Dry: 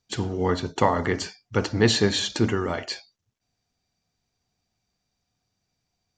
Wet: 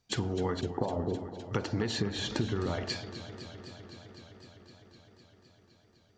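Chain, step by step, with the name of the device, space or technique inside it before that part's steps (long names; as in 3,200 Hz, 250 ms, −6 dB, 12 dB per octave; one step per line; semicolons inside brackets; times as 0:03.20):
0:00.61–0:01.40: Butterworth low-pass 850 Hz 36 dB per octave
0:02.00–0:02.90: spectral tilt −2 dB per octave
serial compression, leveller first (downward compressor, threshold −19 dBFS, peak gain reduction 8 dB; downward compressor 6 to 1, threshold −32 dBFS, peak gain reduction 14 dB)
high-shelf EQ 4,200 Hz −5 dB
feedback echo with a swinging delay time 255 ms, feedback 79%, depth 84 cents, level −13 dB
level +3.5 dB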